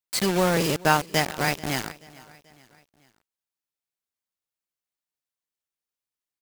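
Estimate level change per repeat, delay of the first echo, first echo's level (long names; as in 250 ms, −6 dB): −6.0 dB, 434 ms, −22.0 dB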